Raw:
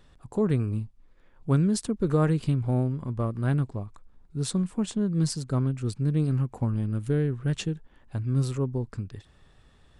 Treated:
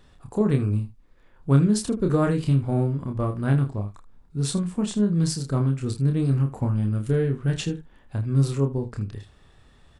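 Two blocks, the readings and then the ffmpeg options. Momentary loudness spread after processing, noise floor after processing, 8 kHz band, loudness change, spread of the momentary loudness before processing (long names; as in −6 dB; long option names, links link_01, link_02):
12 LU, −55 dBFS, +3.5 dB, +3.5 dB, 13 LU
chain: -af "aecho=1:1:29|79:0.596|0.178,volume=2dB"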